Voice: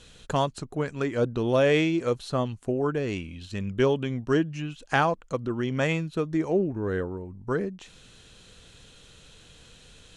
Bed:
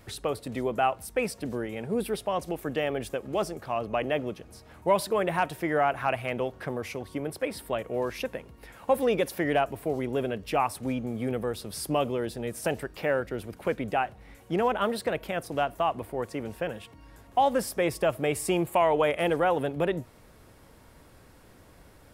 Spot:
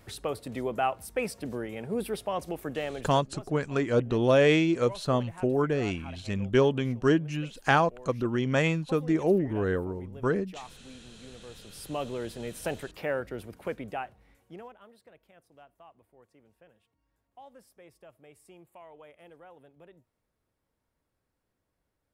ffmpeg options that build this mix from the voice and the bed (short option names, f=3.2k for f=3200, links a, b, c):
-filter_complex "[0:a]adelay=2750,volume=0.5dB[a];[1:a]volume=12.5dB,afade=t=out:st=2.65:d=0.68:silence=0.149624,afade=t=in:st=11.42:d=0.89:silence=0.177828,afade=t=out:st=13.42:d=1.34:silence=0.0668344[b];[a][b]amix=inputs=2:normalize=0"